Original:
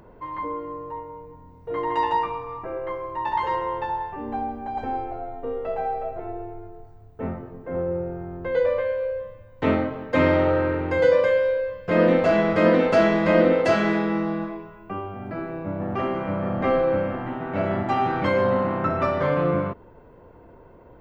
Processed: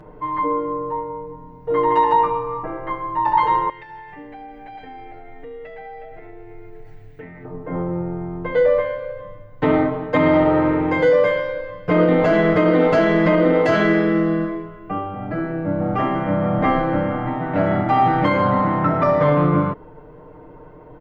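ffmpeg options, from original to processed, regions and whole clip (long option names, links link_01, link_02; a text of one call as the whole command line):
ffmpeg -i in.wav -filter_complex "[0:a]asettb=1/sr,asplit=3[link_01][link_02][link_03];[link_01]atrim=end=3.694[link_04];[link_02]atrim=start=3.69:end=7.45,asetpts=PTS-STARTPTS,afade=type=in:duration=0.004:curve=qsin,afade=type=out:start_time=3.756:duration=0.004:curve=qsin,highshelf=frequency=1500:width_type=q:width=3:gain=9.5,acompressor=threshold=-41dB:ratio=8:attack=3.2:release=140:knee=1:detection=peak[link_05];[link_03]atrim=start=7.446[link_06];[link_04][link_05]acrossfade=duration=0.004:curve1=hsin:curve2=qsin[link_07];[link_07][link_06]acrossfade=duration=0.004:curve1=qsin:curve2=hsin,highshelf=frequency=4200:gain=-11,aecho=1:1:6.6:1,alimiter=level_in=10dB:limit=-1dB:release=50:level=0:latency=1,volume=-6dB" out.wav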